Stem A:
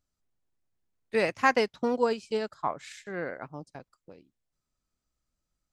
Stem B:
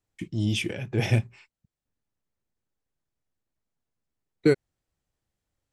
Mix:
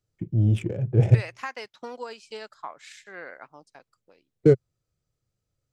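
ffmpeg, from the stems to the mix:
-filter_complex "[0:a]highpass=f=1200:p=1,acompressor=threshold=0.02:ratio=3,volume=1.12,asplit=2[s0][s1];[1:a]adynamicsmooth=sensitivity=1.5:basefreq=1000,equalizer=f=125:t=o:w=1:g=10,equalizer=f=250:t=o:w=1:g=-4,equalizer=f=500:t=o:w=1:g=7,equalizer=f=1000:t=o:w=1:g=-7,equalizer=f=2000:t=o:w=1:g=-5,equalizer=f=4000:t=o:w=1:g=-7,equalizer=f=8000:t=o:w=1:g=7,volume=1[s2];[s1]apad=whole_len=252458[s3];[s2][s3]sidechaincompress=threshold=0.00794:ratio=8:attack=6.1:release=196[s4];[s0][s4]amix=inputs=2:normalize=0,highshelf=f=7600:g=-4.5"

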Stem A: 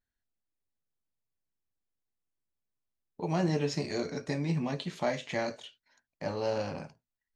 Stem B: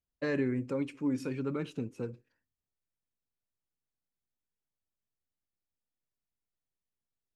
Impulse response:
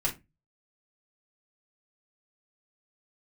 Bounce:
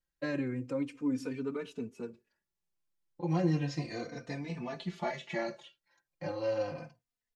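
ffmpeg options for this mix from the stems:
-filter_complex "[0:a]aecho=1:1:5.8:0.75,volume=0.841[s0];[1:a]bass=f=250:g=-4,treble=f=4000:g=8,volume=1.19[s1];[s0][s1]amix=inputs=2:normalize=0,highshelf=f=6200:g=-11,asplit=2[s2][s3];[s3]adelay=3.2,afreqshift=-0.34[s4];[s2][s4]amix=inputs=2:normalize=1"

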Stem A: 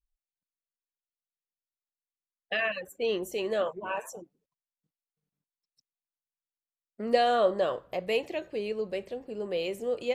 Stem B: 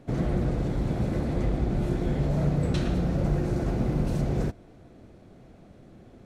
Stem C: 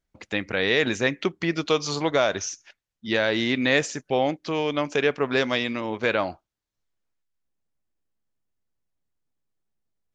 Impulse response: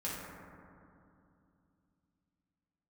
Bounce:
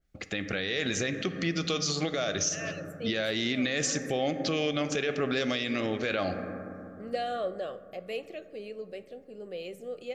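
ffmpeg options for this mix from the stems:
-filter_complex "[0:a]acontrast=79,volume=0.168,asplit=2[s0][s1];[s1]volume=0.15[s2];[2:a]lowshelf=f=140:g=5,alimiter=limit=0.211:level=0:latency=1:release=17,adynamicequalizer=threshold=0.00891:dfrequency=2700:dqfactor=0.7:tfrequency=2700:tqfactor=0.7:attack=5:release=100:ratio=0.375:range=3.5:mode=boostabove:tftype=highshelf,volume=1.26,asplit=2[s3][s4];[s4]volume=0.237[s5];[3:a]atrim=start_sample=2205[s6];[s2][s5]amix=inputs=2:normalize=0[s7];[s7][s6]afir=irnorm=-1:irlink=0[s8];[s0][s3][s8]amix=inputs=3:normalize=0,asuperstop=centerf=950:order=4:qfactor=3.7,alimiter=limit=0.112:level=0:latency=1:release=186"

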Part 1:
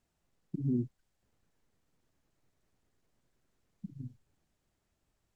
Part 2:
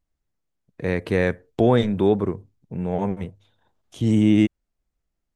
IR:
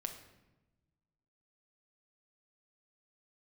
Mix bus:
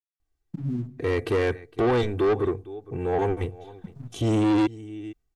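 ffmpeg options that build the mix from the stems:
-filter_complex "[0:a]aecho=1:1:1.2:0.49,aeval=exprs='sgn(val(0))*max(abs(val(0))-0.002,0)':c=same,volume=1,asplit=2[s0][s1];[s1]volume=0.531[s2];[1:a]aecho=1:1:2.6:0.92,dynaudnorm=f=140:g=9:m=2.37,adelay=200,volume=0.668,asplit=2[s3][s4];[s4]volume=0.0708[s5];[2:a]atrim=start_sample=2205[s6];[s2][s6]afir=irnorm=-1:irlink=0[s7];[s5]aecho=0:1:459:1[s8];[s0][s3][s7][s8]amix=inputs=4:normalize=0,asoftclip=type=tanh:threshold=0.126"

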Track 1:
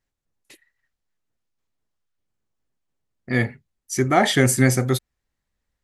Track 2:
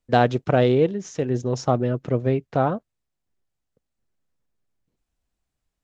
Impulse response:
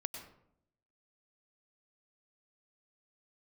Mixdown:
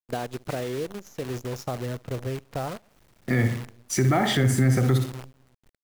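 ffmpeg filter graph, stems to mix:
-filter_complex "[0:a]highshelf=f=4400:g=-11,acrossover=split=150[s0][s1];[s1]acompressor=threshold=0.0501:ratio=3[s2];[s0][s2]amix=inputs=2:normalize=0,volume=0.841,asplit=3[s3][s4][s5];[s4]volume=0.335[s6];[s5]volume=0.447[s7];[1:a]asubboost=boost=11.5:cutoff=67,acompressor=threshold=0.1:ratio=12,volume=0.224,asplit=2[s8][s9];[s9]volume=0.0891[s10];[2:a]atrim=start_sample=2205[s11];[s6][s11]afir=irnorm=-1:irlink=0[s12];[s7][s10]amix=inputs=2:normalize=0,aecho=0:1:61|122|183|244:1|0.25|0.0625|0.0156[s13];[s3][s8][s12][s13]amix=inputs=4:normalize=0,acontrast=78,acrusher=bits=7:dc=4:mix=0:aa=0.000001,alimiter=limit=0.224:level=0:latency=1:release=76"

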